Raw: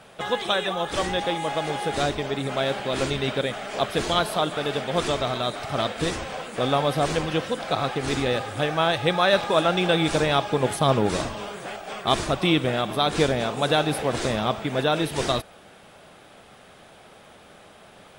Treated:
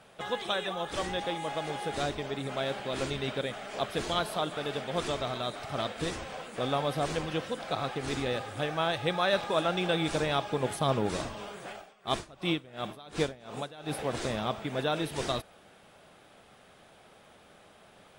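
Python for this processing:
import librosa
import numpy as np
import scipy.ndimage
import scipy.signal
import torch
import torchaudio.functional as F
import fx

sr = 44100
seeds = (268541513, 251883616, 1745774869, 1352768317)

y = fx.tremolo_db(x, sr, hz=2.8, depth_db=21, at=(11.72, 13.97), fade=0.02)
y = y * 10.0 ** (-7.5 / 20.0)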